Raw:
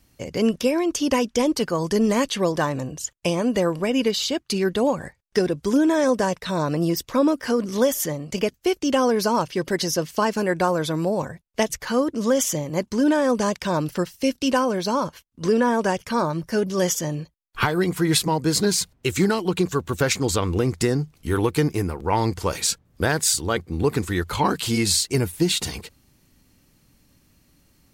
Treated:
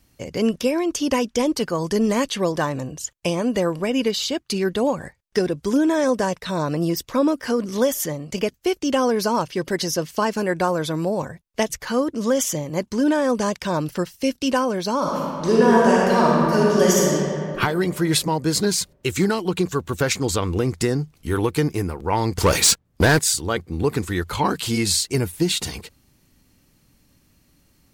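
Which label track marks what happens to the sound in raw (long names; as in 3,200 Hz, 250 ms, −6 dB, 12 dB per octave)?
14.980000	17.110000	thrown reverb, RT60 2.5 s, DRR −5 dB
22.380000	23.190000	leveller curve on the samples passes 3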